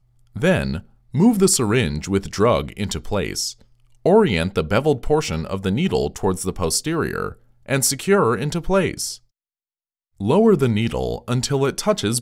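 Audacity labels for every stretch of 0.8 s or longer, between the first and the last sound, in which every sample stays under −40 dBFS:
9.180000	10.200000	silence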